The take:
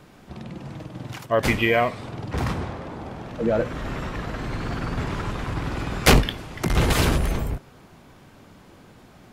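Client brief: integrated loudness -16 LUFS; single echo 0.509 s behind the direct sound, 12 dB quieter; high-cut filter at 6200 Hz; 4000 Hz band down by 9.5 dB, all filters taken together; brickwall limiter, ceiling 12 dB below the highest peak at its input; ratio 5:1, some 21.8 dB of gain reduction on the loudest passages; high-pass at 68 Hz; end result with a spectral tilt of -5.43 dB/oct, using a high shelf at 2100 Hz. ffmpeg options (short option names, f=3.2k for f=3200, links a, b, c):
-af "highpass=68,lowpass=6.2k,highshelf=f=2.1k:g=-7.5,equalizer=f=4k:t=o:g=-5,acompressor=threshold=-38dB:ratio=5,alimiter=level_in=11dB:limit=-24dB:level=0:latency=1,volume=-11dB,aecho=1:1:509:0.251,volume=28.5dB"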